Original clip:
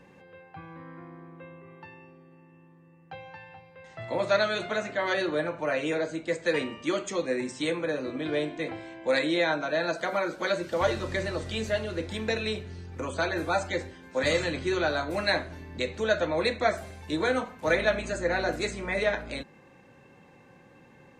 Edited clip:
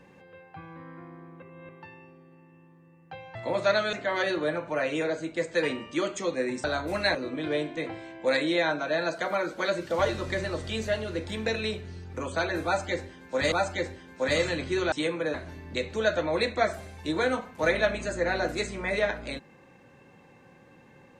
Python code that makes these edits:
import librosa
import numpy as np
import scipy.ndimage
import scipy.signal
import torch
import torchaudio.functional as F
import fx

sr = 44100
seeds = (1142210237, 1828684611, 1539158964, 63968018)

y = fx.edit(x, sr, fx.reverse_span(start_s=1.42, length_s=0.27),
    fx.cut(start_s=3.35, length_s=0.65),
    fx.cut(start_s=4.58, length_s=0.26),
    fx.swap(start_s=7.55, length_s=0.42, other_s=14.87, other_length_s=0.51),
    fx.repeat(start_s=13.47, length_s=0.87, count=2), tone=tone)